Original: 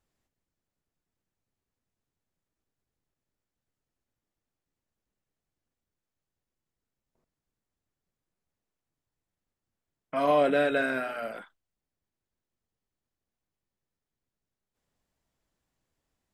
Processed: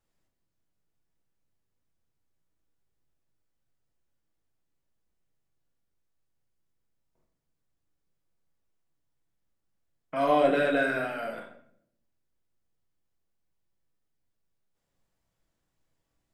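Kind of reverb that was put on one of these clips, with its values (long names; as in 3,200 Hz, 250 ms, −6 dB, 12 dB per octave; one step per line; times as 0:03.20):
rectangular room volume 120 cubic metres, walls mixed, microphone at 0.65 metres
level −1.5 dB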